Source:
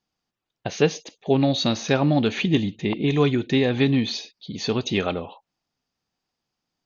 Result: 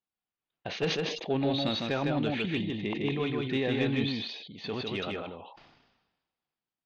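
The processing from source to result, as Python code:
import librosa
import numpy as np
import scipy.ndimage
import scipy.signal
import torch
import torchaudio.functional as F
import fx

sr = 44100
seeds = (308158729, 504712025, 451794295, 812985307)

p1 = scipy.signal.sosfilt(scipy.signal.butter(4, 3800.0, 'lowpass', fs=sr, output='sos'), x)
p2 = fx.low_shelf(p1, sr, hz=380.0, db=-5.5)
p3 = fx.level_steps(p2, sr, step_db=17)
p4 = p2 + F.gain(torch.from_numpy(p3), -0.5).numpy()
p5 = 10.0 ** (-8.5 / 20.0) * np.tanh(p4 / 10.0 ** (-8.5 / 20.0))
p6 = fx.tremolo_random(p5, sr, seeds[0], hz=2.6, depth_pct=55)
p7 = p6 + fx.echo_single(p6, sr, ms=155, db=-3.0, dry=0)
p8 = fx.sustainer(p7, sr, db_per_s=49.0)
y = F.gain(torch.from_numpy(p8), -8.0).numpy()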